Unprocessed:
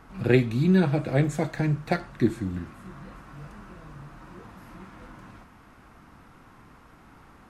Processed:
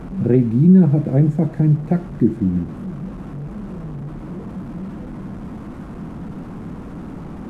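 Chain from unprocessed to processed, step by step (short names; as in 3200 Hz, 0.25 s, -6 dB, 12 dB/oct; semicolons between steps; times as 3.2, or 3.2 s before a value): delta modulation 64 kbps, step -32.5 dBFS; EQ curve 120 Hz 0 dB, 170 Hz +8 dB, 4300 Hz -24 dB; in parallel at +2 dB: limiter -16 dBFS, peak gain reduction 10 dB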